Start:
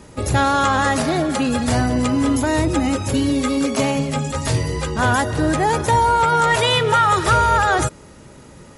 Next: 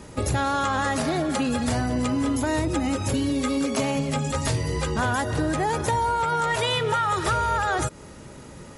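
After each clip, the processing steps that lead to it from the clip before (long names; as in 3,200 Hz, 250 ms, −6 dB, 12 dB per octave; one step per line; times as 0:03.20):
downward compressor 4 to 1, threshold −22 dBFS, peak gain reduction 9.5 dB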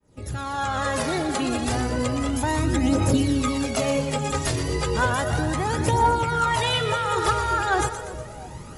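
fade in at the beginning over 1.00 s
echo with a time of its own for lows and highs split 790 Hz, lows 342 ms, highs 121 ms, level −9.5 dB
phase shifter 0.33 Hz, delay 2.9 ms, feedback 48%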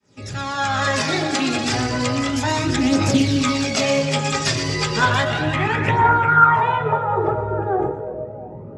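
low-pass filter sweep 5,000 Hz → 540 Hz, 0:04.97–0:07.47
convolution reverb RT60 0.40 s, pre-delay 3 ms, DRR 5.5 dB
highs frequency-modulated by the lows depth 0.15 ms
level +5 dB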